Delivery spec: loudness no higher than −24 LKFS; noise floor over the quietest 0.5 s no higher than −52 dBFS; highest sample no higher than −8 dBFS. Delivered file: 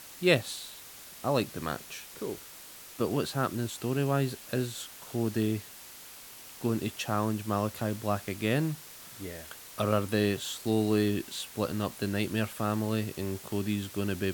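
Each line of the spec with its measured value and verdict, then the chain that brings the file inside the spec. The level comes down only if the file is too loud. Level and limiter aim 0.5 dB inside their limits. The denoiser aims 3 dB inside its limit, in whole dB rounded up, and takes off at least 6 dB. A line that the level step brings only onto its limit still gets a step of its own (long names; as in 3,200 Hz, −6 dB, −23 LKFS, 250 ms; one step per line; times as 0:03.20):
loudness −31.5 LKFS: in spec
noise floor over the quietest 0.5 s −48 dBFS: out of spec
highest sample −9.0 dBFS: in spec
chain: broadband denoise 7 dB, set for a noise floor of −48 dBFS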